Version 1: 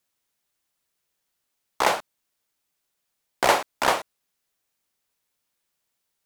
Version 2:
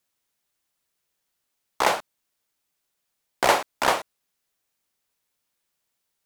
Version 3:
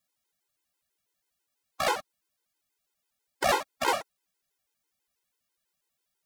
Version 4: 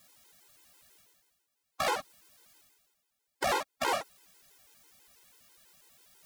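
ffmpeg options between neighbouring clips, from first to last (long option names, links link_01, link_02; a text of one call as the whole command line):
ffmpeg -i in.wav -af anull out.wav
ffmpeg -i in.wav -af "volume=15.5dB,asoftclip=hard,volume=-15.5dB,afftfilt=real='re*gt(sin(2*PI*6.1*pts/sr)*(1-2*mod(floor(b*sr/1024/270),2)),0)':imag='im*gt(sin(2*PI*6.1*pts/sr)*(1-2*mod(floor(b*sr/1024/270),2)),0)':win_size=1024:overlap=0.75" out.wav
ffmpeg -i in.wav -af "areverse,acompressor=mode=upward:threshold=-44dB:ratio=2.5,areverse,alimiter=limit=-20dB:level=0:latency=1:release=12" out.wav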